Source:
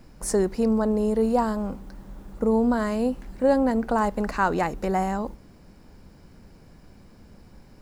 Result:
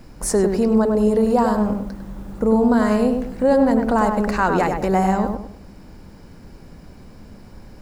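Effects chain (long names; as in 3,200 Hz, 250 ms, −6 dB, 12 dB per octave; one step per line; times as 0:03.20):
in parallel at +1 dB: brickwall limiter −19.5 dBFS, peak gain reduction 11 dB
on the sum: feedback echo with a low-pass in the loop 100 ms, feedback 35%, low-pass 1,900 Hz, level −4.5 dB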